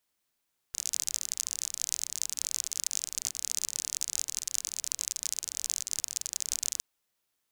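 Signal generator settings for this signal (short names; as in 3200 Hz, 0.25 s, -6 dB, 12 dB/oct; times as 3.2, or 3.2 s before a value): rain from filtered ticks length 6.06 s, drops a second 41, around 6600 Hz, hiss -27.5 dB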